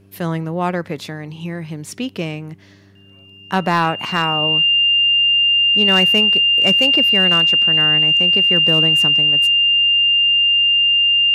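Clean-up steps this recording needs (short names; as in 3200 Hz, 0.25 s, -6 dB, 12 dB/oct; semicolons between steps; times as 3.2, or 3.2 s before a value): clip repair -6 dBFS; de-hum 98.2 Hz, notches 4; notch 2800 Hz, Q 30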